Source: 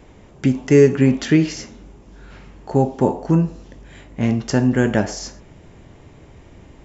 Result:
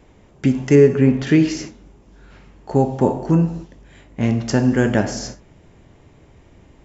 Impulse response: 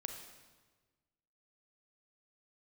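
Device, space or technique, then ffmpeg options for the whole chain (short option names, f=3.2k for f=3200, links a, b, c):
keyed gated reverb: -filter_complex "[0:a]asettb=1/sr,asplit=3[a][b][c];[a]atrim=end=0.754[d];[b]atrim=start=0.75:end=1.27,asetpts=PTS-STARTPTS,afade=t=in:d=0.004:c=qsin,afade=t=out:st=0.516:d=0.004:c=qsin,aemphasis=mode=reproduction:type=75kf[e];[c]atrim=start=1.266[f];[d][e]acrossfade=d=0.004:c1=hsin:c2=qsin[g];[g][f]acrossfade=d=0.004:c1=qsin:c2=hsin,asplit=3[h][i][j];[1:a]atrim=start_sample=2205[k];[i][k]afir=irnorm=-1:irlink=0[l];[j]apad=whole_len=301946[m];[l][m]sidechaingate=range=-33dB:threshold=-36dB:ratio=16:detection=peak,volume=0dB[n];[h][n]amix=inputs=2:normalize=0,volume=-4.5dB"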